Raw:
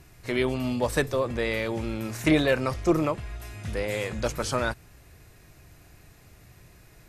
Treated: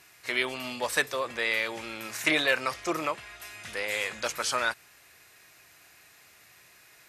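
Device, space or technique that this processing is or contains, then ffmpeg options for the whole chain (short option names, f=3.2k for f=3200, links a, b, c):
filter by subtraction: -filter_complex "[0:a]asplit=2[a][b];[b]lowpass=2k,volume=-1[c];[a][c]amix=inputs=2:normalize=0,volume=2.5dB"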